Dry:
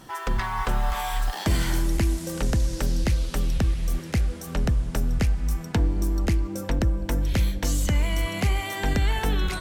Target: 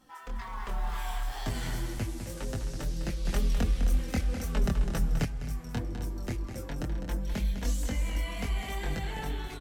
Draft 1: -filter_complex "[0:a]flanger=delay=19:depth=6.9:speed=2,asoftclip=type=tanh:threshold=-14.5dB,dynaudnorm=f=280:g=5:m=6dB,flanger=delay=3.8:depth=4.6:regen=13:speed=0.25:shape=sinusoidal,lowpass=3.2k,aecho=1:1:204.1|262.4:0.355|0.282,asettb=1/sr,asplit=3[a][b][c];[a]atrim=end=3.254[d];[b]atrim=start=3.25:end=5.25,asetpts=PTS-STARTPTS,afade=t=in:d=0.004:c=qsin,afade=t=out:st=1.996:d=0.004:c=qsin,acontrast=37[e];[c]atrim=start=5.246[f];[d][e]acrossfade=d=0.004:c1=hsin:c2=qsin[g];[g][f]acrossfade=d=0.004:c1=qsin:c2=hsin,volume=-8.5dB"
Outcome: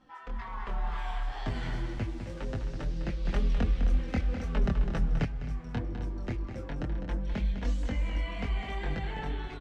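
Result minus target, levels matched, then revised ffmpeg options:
4000 Hz band -4.0 dB
-filter_complex "[0:a]flanger=delay=19:depth=6.9:speed=2,asoftclip=type=tanh:threshold=-14.5dB,dynaudnorm=f=280:g=5:m=6dB,flanger=delay=3.8:depth=4.6:regen=13:speed=0.25:shape=sinusoidal,aecho=1:1:204.1|262.4:0.355|0.282,asettb=1/sr,asplit=3[a][b][c];[a]atrim=end=3.254[d];[b]atrim=start=3.25:end=5.25,asetpts=PTS-STARTPTS,afade=t=in:d=0.004:c=qsin,afade=t=out:st=1.996:d=0.004:c=qsin,acontrast=37[e];[c]atrim=start=5.246[f];[d][e]acrossfade=d=0.004:c1=hsin:c2=qsin[g];[g][f]acrossfade=d=0.004:c1=qsin:c2=hsin,volume=-8.5dB"

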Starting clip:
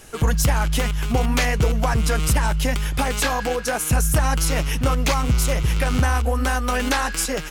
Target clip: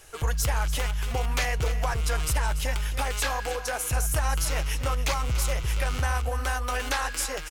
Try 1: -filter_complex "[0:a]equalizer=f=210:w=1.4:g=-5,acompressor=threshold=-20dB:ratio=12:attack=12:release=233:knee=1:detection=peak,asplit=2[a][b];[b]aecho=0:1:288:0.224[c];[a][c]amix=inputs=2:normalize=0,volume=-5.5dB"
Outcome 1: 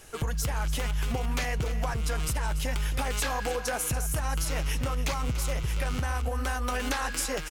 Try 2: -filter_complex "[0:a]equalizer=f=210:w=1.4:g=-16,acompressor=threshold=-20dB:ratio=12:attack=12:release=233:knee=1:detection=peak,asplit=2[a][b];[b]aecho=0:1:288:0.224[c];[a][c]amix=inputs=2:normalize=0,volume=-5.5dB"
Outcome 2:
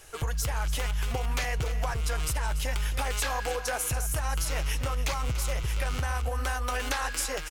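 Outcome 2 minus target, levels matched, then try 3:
compressor: peak gain reduction +5.5 dB
-filter_complex "[0:a]equalizer=f=210:w=1.4:g=-16,asplit=2[a][b];[b]aecho=0:1:288:0.224[c];[a][c]amix=inputs=2:normalize=0,volume=-5.5dB"

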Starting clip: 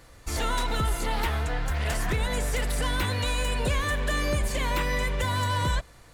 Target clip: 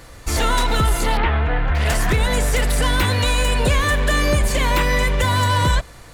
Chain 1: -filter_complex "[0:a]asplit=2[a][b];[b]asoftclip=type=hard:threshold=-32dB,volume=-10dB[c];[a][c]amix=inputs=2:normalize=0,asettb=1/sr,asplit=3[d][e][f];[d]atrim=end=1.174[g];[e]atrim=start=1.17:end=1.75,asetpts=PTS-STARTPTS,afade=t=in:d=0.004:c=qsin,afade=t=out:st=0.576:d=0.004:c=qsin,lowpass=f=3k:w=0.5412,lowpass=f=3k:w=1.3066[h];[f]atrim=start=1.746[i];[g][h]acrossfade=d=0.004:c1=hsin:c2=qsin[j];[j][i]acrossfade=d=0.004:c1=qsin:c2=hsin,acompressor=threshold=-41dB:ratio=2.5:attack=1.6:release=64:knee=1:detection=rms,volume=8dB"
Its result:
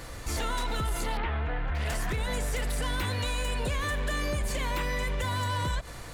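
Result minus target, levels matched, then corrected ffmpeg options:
compressor: peak gain reduction +14 dB
-filter_complex "[0:a]asplit=2[a][b];[b]asoftclip=type=hard:threshold=-32dB,volume=-10dB[c];[a][c]amix=inputs=2:normalize=0,asettb=1/sr,asplit=3[d][e][f];[d]atrim=end=1.174[g];[e]atrim=start=1.17:end=1.75,asetpts=PTS-STARTPTS,afade=t=in:d=0.004:c=qsin,afade=t=out:st=0.576:d=0.004:c=qsin,lowpass=f=3k:w=0.5412,lowpass=f=3k:w=1.3066[h];[f]atrim=start=1.746[i];[g][h]acrossfade=d=0.004:c1=hsin:c2=qsin[j];[j][i]acrossfade=d=0.004:c1=qsin:c2=hsin,volume=8dB"

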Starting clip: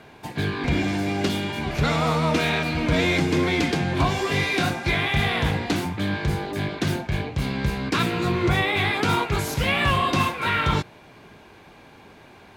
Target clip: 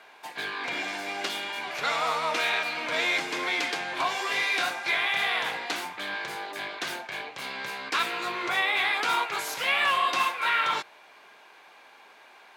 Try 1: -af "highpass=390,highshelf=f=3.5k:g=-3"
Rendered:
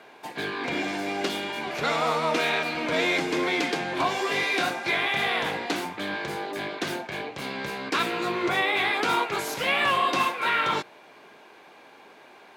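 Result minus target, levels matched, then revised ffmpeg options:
500 Hz band +6.0 dB
-af "highpass=810,highshelf=f=3.5k:g=-3"

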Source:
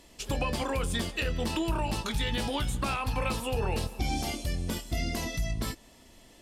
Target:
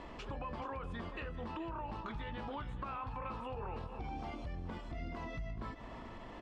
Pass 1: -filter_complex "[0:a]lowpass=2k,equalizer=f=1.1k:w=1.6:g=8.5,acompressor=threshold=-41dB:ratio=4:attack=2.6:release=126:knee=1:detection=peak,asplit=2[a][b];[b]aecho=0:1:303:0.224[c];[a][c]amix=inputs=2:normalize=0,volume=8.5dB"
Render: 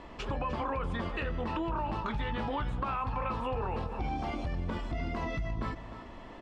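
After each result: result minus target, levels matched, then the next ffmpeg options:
compressor: peak gain reduction -8.5 dB; echo 0.126 s early
-filter_complex "[0:a]lowpass=2k,equalizer=f=1.1k:w=1.6:g=8.5,acompressor=threshold=-52.5dB:ratio=4:attack=2.6:release=126:knee=1:detection=peak,asplit=2[a][b];[b]aecho=0:1:303:0.224[c];[a][c]amix=inputs=2:normalize=0,volume=8.5dB"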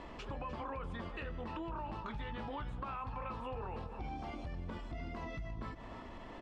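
echo 0.126 s early
-filter_complex "[0:a]lowpass=2k,equalizer=f=1.1k:w=1.6:g=8.5,acompressor=threshold=-52.5dB:ratio=4:attack=2.6:release=126:knee=1:detection=peak,asplit=2[a][b];[b]aecho=0:1:429:0.224[c];[a][c]amix=inputs=2:normalize=0,volume=8.5dB"

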